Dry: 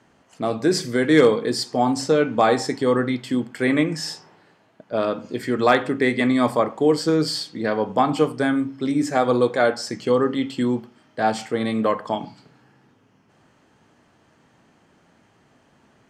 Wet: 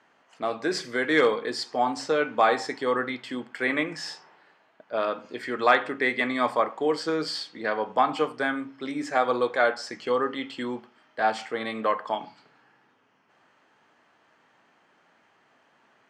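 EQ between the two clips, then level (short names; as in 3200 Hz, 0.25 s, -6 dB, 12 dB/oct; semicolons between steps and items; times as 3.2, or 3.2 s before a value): band-pass 1600 Hz, Q 0.59; 0.0 dB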